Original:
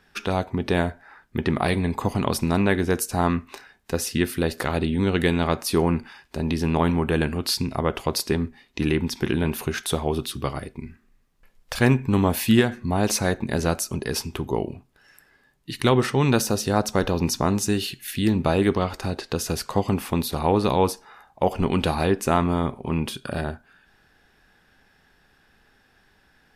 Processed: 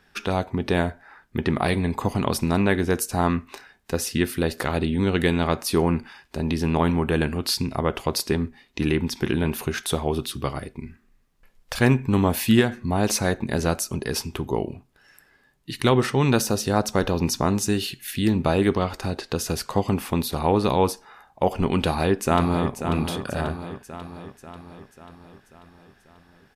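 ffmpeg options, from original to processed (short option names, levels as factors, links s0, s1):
-filter_complex "[0:a]asplit=2[s0][s1];[s1]afade=t=in:st=21.77:d=0.01,afade=t=out:st=22.75:d=0.01,aecho=0:1:540|1080|1620|2160|2700|3240|3780|4320:0.375837|0.225502|0.135301|0.0811809|0.0487085|0.0292251|0.0175351|0.010521[s2];[s0][s2]amix=inputs=2:normalize=0"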